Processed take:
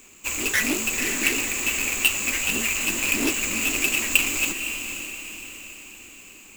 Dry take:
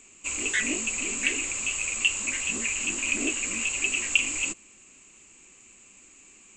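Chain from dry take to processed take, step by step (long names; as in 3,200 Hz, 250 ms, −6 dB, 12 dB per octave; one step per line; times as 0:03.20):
each half-wave held at its own peak
feedback delay with all-pass diffusion 513 ms, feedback 49%, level −8 dB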